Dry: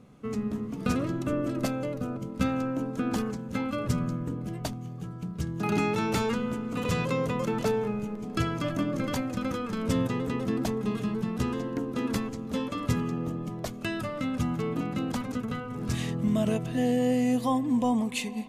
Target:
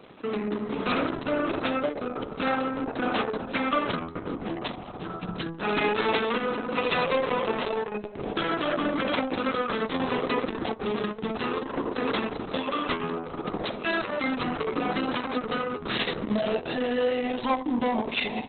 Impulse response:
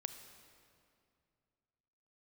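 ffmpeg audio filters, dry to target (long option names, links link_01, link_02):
-filter_complex "[0:a]highpass=390,equalizer=frequency=5800:width=1.1:gain=5.5,asplit=2[link_01][link_02];[link_02]acompressor=threshold=-40dB:ratio=12,volume=-1dB[link_03];[link_01][link_03]amix=inputs=2:normalize=0,asoftclip=type=tanh:threshold=-27.5dB,asplit=2[link_04][link_05];[link_05]adelay=62,lowpass=frequency=1400:poles=1,volume=-7dB,asplit=2[link_06][link_07];[link_07]adelay=62,lowpass=frequency=1400:poles=1,volume=0.31,asplit=2[link_08][link_09];[link_09]adelay=62,lowpass=frequency=1400:poles=1,volume=0.31,asplit=2[link_10][link_11];[link_11]adelay=62,lowpass=frequency=1400:poles=1,volume=0.31[link_12];[link_06][link_08][link_10][link_12]amix=inputs=4:normalize=0[link_13];[link_04][link_13]amix=inputs=2:normalize=0,volume=8dB" -ar 48000 -c:a libopus -b:a 6k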